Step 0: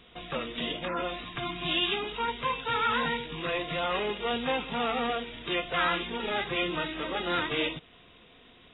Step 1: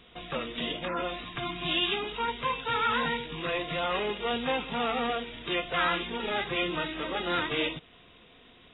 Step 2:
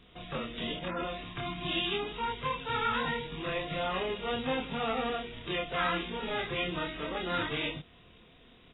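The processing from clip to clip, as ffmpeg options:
ffmpeg -i in.wav -af anull out.wav
ffmpeg -i in.wav -filter_complex "[0:a]lowshelf=frequency=250:gain=7.5,asplit=2[link_01][link_02];[link_02]adelay=27,volume=-2dB[link_03];[link_01][link_03]amix=inputs=2:normalize=0,volume=-6dB" out.wav

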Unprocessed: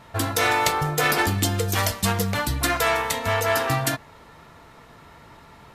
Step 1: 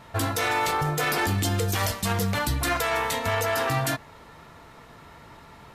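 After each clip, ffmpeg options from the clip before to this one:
ffmpeg -i in.wav -af "alimiter=limit=-16dB:level=0:latency=1:release=13" out.wav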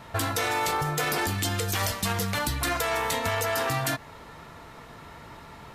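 ffmpeg -i in.wav -filter_complex "[0:a]acrossover=split=920|4300[link_01][link_02][link_03];[link_01]acompressor=threshold=-31dB:ratio=4[link_04];[link_02]acompressor=threshold=-32dB:ratio=4[link_05];[link_03]acompressor=threshold=-32dB:ratio=4[link_06];[link_04][link_05][link_06]amix=inputs=3:normalize=0,volume=2.5dB" out.wav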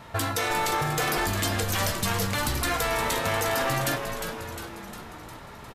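ffmpeg -i in.wav -filter_complex "[0:a]asplit=9[link_01][link_02][link_03][link_04][link_05][link_06][link_07][link_08][link_09];[link_02]adelay=355,afreqshift=-110,volume=-7dB[link_10];[link_03]adelay=710,afreqshift=-220,volume=-11.6dB[link_11];[link_04]adelay=1065,afreqshift=-330,volume=-16.2dB[link_12];[link_05]adelay=1420,afreqshift=-440,volume=-20.7dB[link_13];[link_06]adelay=1775,afreqshift=-550,volume=-25.3dB[link_14];[link_07]adelay=2130,afreqshift=-660,volume=-29.9dB[link_15];[link_08]adelay=2485,afreqshift=-770,volume=-34.5dB[link_16];[link_09]adelay=2840,afreqshift=-880,volume=-39.1dB[link_17];[link_01][link_10][link_11][link_12][link_13][link_14][link_15][link_16][link_17]amix=inputs=9:normalize=0" out.wav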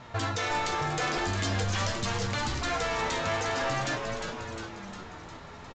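ffmpeg -i in.wav -filter_complex "[0:a]asplit=2[link_01][link_02];[link_02]aeval=exprs='0.0447*(abs(mod(val(0)/0.0447+3,4)-2)-1)':channel_layout=same,volume=-10dB[link_03];[link_01][link_03]amix=inputs=2:normalize=0,flanger=delay=8.1:depth=4.1:regen=56:speed=0.46:shape=triangular,aresample=16000,aresample=44100" out.wav

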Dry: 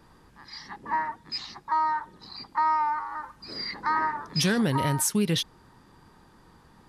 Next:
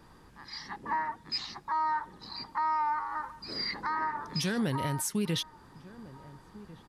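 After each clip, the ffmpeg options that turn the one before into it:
ffmpeg -i in.wav -filter_complex "[0:a]alimiter=limit=-22.5dB:level=0:latency=1:release=257,asplit=2[link_01][link_02];[link_02]adelay=1399,volume=-18dB,highshelf=frequency=4000:gain=-31.5[link_03];[link_01][link_03]amix=inputs=2:normalize=0" out.wav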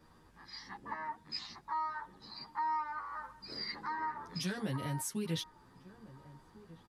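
ffmpeg -i in.wav -filter_complex "[0:a]asplit=2[link_01][link_02];[link_02]adelay=10.3,afreqshift=0.78[link_03];[link_01][link_03]amix=inputs=2:normalize=1,volume=-3.5dB" out.wav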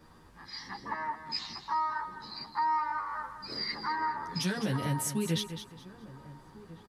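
ffmpeg -i in.wav -af "aecho=1:1:207|414|621:0.299|0.0776|0.0202,volume=5.5dB" out.wav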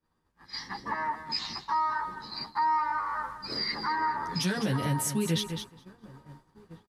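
ffmpeg -i in.wav -filter_complex "[0:a]agate=range=-33dB:threshold=-41dB:ratio=3:detection=peak,asplit=2[link_01][link_02];[link_02]alimiter=level_in=6.5dB:limit=-24dB:level=0:latency=1:release=93,volume=-6.5dB,volume=-1.5dB[link_03];[link_01][link_03]amix=inputs=2:normalize=0" out.wav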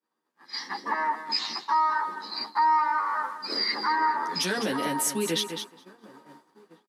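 ffmpeg -i in.wav -af "highpass=frequency=250:width=0.5412,highpass=frequency=250:width=1.3066,dynaudnorm=framelen=120:gausssize=7:maxgain=8.5dB,volume=-4dB" out.wav

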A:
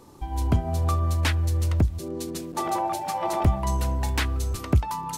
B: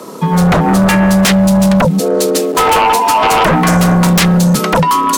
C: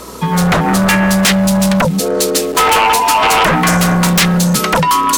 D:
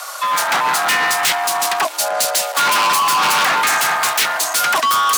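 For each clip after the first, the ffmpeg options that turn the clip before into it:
ffmpeg -i in.wav -af "afreqshift=110,equalizer=frequency=110:width=3.4:gain=-13,aeval=exprs='0.316*sin(PI/2*5.01*val(0)/0.316)':channel_layout=same,volume=3.5dB" out.wav
ffmpeg -i in.wav -filter_complex "[0:a]acrossover=split=1300[link_01][link_02];[link_02]acontrast=89[link_03];[link_01][link_03]amix=inputs=2:normalize=0,aeval=exprs='val(0)+0.0141*(sin(2*PI*60*n/s)+sin(2*PI*2*60*n/s)/2+sin(2*PI*3*60*n/s)/3+sin(2*PI*4*60*n/s)/4+sin(2*PI*5*60*n/s)/5)':channel_layout=same,volume=-3dB" out.wav
ffmpeg -i in.wav -af "highpass=frequency=630:width=0.5412,highpass=frequency=630:width=1.3066,volume=17.5dB,asoftclip=hard,volume=-17.5dB,afreqshift=130,volume=4dB" out.wav

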